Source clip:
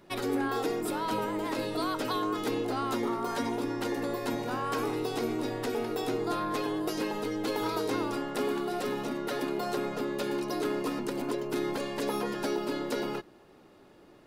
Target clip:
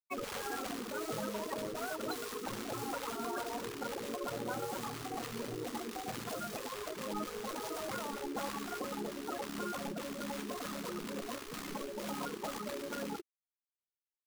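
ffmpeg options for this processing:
ffmpeg -i in.wav -af "lowpass=4400,afftfilt=real='re*gte(hypot(re,im),0.0708)':imag='im*gte(hypot(re,im),0.0708)':win_size=1024:overlap=0.75,acrusher=bits=3:mode=log:mix=0:aa=0.000001,adynamicequalizer=threshold=0.00355:dfrequency=1200:dqfactor=2.6:tfrequency=1200:tqfactor=2.6:attack=5:release=100:ratio=0.375:range=3.5:mode=boostabove:tftype=bell,afftfilt=real='re*lt(hypot(re,im),0.112)':imag='im*lt(hypot(re,im),0.112)':win_size=1024:overlap=0.75,volume=1dB" out.wav

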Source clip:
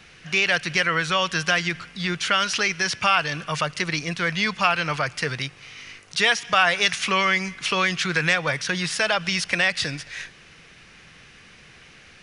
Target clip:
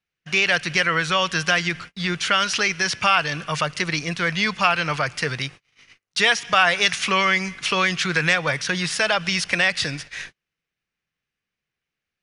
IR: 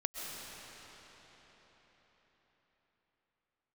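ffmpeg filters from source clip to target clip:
-af "agate=range=-38dB:threshold=-38dB:ratio=16:detection=peak,volume=1.5dB"

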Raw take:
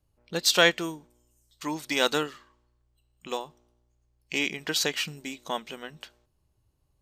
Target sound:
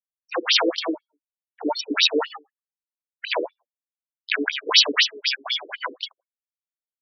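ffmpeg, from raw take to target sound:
ffmpeg -i in.wav -filter_complex "[0:a]afftfilt=real='re*gte(hypot(re,im),0.01)':imag='im*gte(hypot(re,im),0.01)':win_size=1024:overlap=0.75,acrossover=split=170[link_01][link_02];[link_01]acontrast=37[link_03];[link_03][link_02]amix=inputs=2:normalize=0,aemphasis=mode=production:type=50fm,asplit=2[link_04][link_05];[link_05]adelay=81,lowpass=frequency=950:poles=1,volume=-19dB,asplit=2[link_06][link_07];[link_07]adelay=81,lowpass=frequency=950:poles=1,volume=0.19[link_08];[link_04][link_06][link_08]amix=inputs=3:normalize=0,aeval=exprs='1*sin(PI/2*5.62*val(0)/1)':channel_layout=same,acrossover=split=150[link_09][link_10];[link_10]acompressor=threshold=-12dB:ratio=3[link_11];[link_09][link_11]amix=inputs=2:normalize=0,highshelf=frequency=6700:gain=9.5,asplit=3[link_12][link_13][link_14];[link_13]asetrate=29433,aresample=44100,atempo=1.49831,volume=0dB[link_15];[link_14]asetrate=66075,aresample=44100,atempo=0.66742,volume=-12dB[link_16];[link_12][link_15][link_16]amix=inputs=3:normalize=0,afftfilt=real='re*between(b*sr/1024,360*pow(4300/360,0.5+0.5*sin(2*PI*4*pts/sr))/1.41,360*pow(4300/360,0.5+0.5*sin(2*PI*4*pts/sr))*1.41)':imag='im*between(b*sr/1024,360*pow(4300/360,0.5+0.5*sin(2*PI*4*pts/sr))/1.41,360*pow(4300/360,0.5+0.5*sin(2*PI*4*pts/sr))*1.41)':win_size=1024:overlap=0.75,volume=-4dB" out.wav

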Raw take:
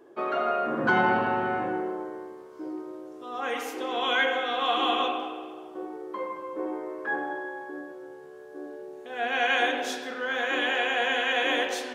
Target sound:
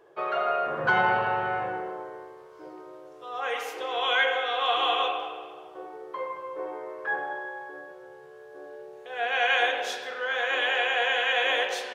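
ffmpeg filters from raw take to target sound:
ffmpeg -i in.wav -af "firequalizer=gain_entry='entry(150,0);entry(250,-19);entry(440,0);entry(2800,2);entry(7400,-3)':delay=0.05:min_phase=1" out.wav

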